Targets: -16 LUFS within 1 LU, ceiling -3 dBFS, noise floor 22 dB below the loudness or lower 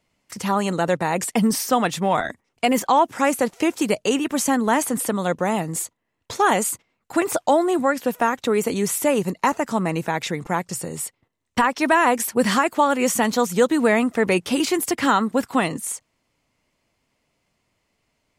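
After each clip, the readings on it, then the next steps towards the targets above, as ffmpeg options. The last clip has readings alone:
loudness -21.5 LUFS; peak -6.0 dBFS; loudness target -16.0 LUFS
-> -af "volume=5.5dB,alimiter=limit=-3dB:level=0:latency=1"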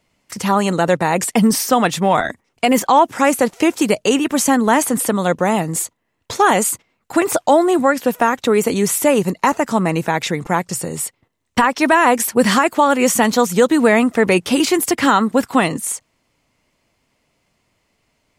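loudness -16.0 LUFS; peak -3.0 dBFS; noise floor -68 dBFS

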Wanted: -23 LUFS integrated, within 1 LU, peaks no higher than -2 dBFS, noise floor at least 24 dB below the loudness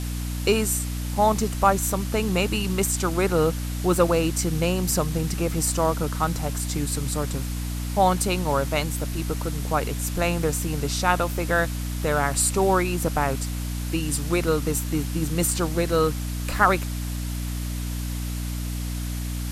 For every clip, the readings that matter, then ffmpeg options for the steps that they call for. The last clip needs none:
hum 60 Hz; harmonics up to 300 Hz; hum level -26 dBFS; noise floor -29 dBFS; noise floor target -49 dBFS; loudness -24.5 LUFS; peak -4.0 dBFS; loudness target -23.0 LUFS
-> -af "bandreject=f=60:t=h:w=6,bandreject=f=120:t=h:w=6,bandreject=f=180:t=h:w=6,bandreject=f=240:t=h:w=6,bandreject=f=300:t=h:w=6"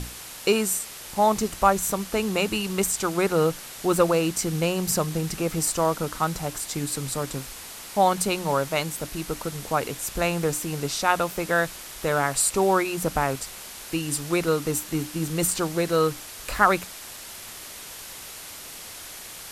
hum none; noise floor -40 dBFS; noise floor target -49 dBFS
-> -af "afftdn=nr=9:nf=-40"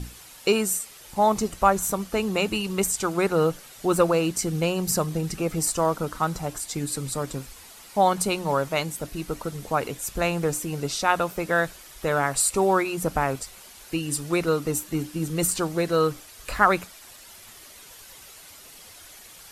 noise floor -47 dBFS; noise floor target -49 dBFS
-> -af "afftdn=nr=6:nf=-47"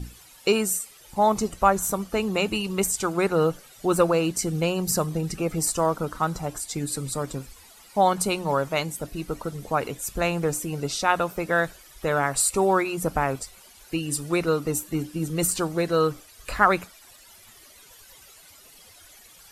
noise floor -51 dBFS; loudness -25.0 LUFS; peak -4.5 dBFS; loudness target -23.0 LUFS
-> -af "volume=2dB"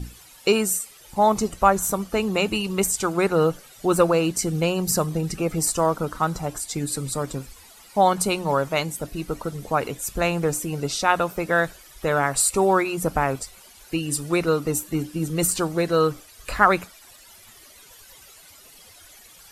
loudness -23.0 LUFS; peak -2.5 dBFS; noise floor -49 dBFS

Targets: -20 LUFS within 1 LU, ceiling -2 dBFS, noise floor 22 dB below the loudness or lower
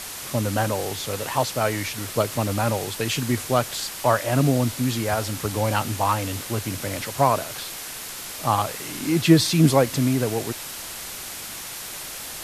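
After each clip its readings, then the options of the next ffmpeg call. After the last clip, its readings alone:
noise floor -35 dBFS; noise floor target -46 dBFS; loudness -24.0 LUFS; peak -3.0 dBFS; loudness target -20.0 LUFS
-> -af "afftdn=nr=11:nf=-35"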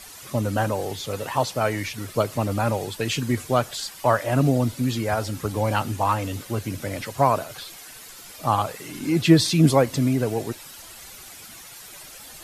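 noise floor -43 dBFS; noise floor target -46 dBFS
-> -af "afftdn=nr=6:nf=-43"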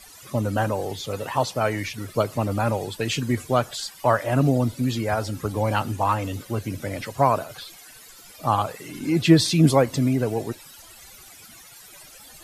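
noise floor -47 dBFS; loudness -23.5 LUFS; peak -3.5 dBFS; loudness target -20.0 LUFS
-> -af "volume=3.5dB,alimiter=limit=-2dB:level=0:latency=1"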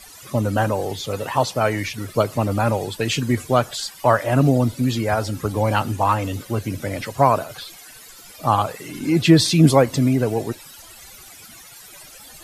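loudness -20.0 LUFS; peak -2.0 dBFS; noise floor -43 dBFS

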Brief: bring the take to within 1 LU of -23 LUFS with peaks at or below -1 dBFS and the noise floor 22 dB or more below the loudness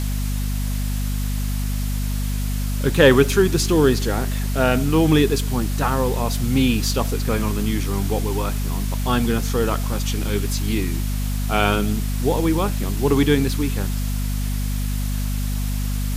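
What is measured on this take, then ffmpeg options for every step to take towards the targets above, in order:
hum 50 Hz; harmonics up to 250 Hz; hum level -20 dBFS; noise floor -23 dBFS; noise floor target -44 dBFS; loudness -21.5 LUFS; peak -2.0 dBFS; loudness target -23.0 LUFS
-> -af "bandreject=f=50:t=h:w=4,bandreject=f=100:t=h:w=4,bandreject=f=150:t=h:w=4,bandreject=f=200:t=h:w=4,bandreject=f=250:t=h:w=4"
-af "afftdn=nr=21:nf=-23"
-af "volume=-1.5dB"

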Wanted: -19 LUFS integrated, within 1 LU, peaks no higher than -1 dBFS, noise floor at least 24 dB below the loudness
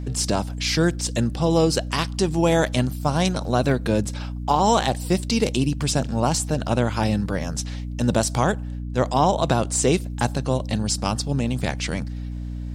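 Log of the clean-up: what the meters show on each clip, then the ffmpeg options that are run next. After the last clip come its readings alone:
hum 60 Hz; harmonics up to 300 Hz; hum level -27 dBFS; loudness -22.5 LUFS; peak -6.5 dBFS; loudness target -19.0 LUFS
-> -af "bandreject=f=60:t=h:w=6,bandreject=f=120:t=h:w=6,bandreject=f=180:t=h:w=6,bandreject=f=240:t=h:w=6,bandreject=f=300:t=h:w=6"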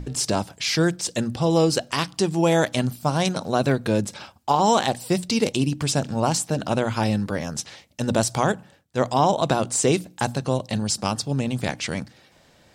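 hum none; loudness -23.5 LUFS; peak -6.5 dBFS; loudness target -19.0 LUFS
-> -af "volume=4.5dB"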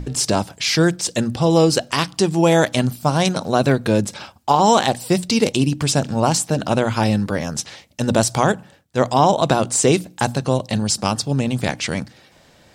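loudness -19.0 LUFS; peak -2.0 dBFS; noise floor -52 dBFS

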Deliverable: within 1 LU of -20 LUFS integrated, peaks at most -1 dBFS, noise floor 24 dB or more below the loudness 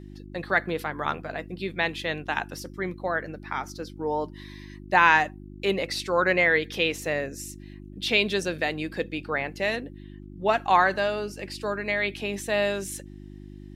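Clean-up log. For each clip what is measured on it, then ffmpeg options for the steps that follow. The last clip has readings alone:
hum 50 Hz; harmonics up to 350 Hz; hum level -41 dBFS; loudness -26.0 LUFS; peak -4.5 dBFS; loudness target -20.0 LUFS
-> -af "bandreject=f=50:t=h:w=4,bandreject=f=100:t=h:w=4,bandreject=f=150:t=h:w=4,bandreject=f=200:t=h:w=4,bandreject=f=250:t=h:w=4,bandreject=f=300:t=h:w=4,bandreject=f=350:t=h:w=4"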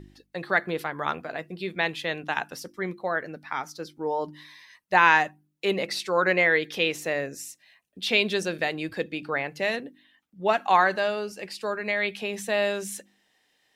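hum none; loudness -26.0 LUFS; peak -4.0 dBFS; loudness target -20.0 LUFS
-> -af "volume=6dB,alimiter=limit=-1dB:level=0:latency=1"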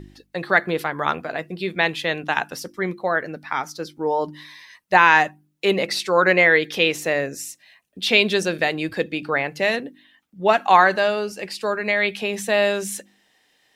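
loudness -20.5 LUFS; peak -1.0 dBFS; noise floor -64 dBFS

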